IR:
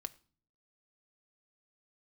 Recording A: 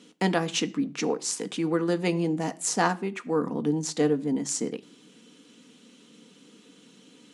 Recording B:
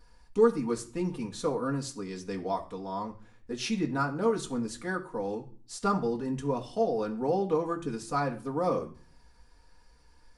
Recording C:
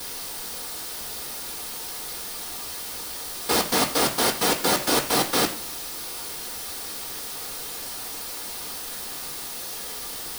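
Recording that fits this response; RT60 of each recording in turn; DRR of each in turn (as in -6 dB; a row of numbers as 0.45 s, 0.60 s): A; 0.40 s, no single decay rate, no single decay rate; 9.5 dB, 0.0 dB, -7.5 dB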